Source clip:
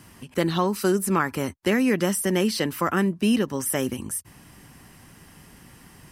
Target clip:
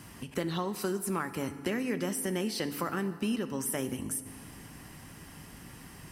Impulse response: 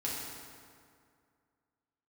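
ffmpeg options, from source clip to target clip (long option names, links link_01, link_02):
-filter_complex "[0:a]acompressor=threshold=-34dB:ratio=2.5,asplit=2[link_01][link_02];[1:a]atrim=start_sample=2205,adelay=18[link_03];[link_02][link_03]afir=irnorm=-1:irlink=0,volume=-14.5dB[link_04];[link_01][link_04]amix=inputs=2:normalize=0"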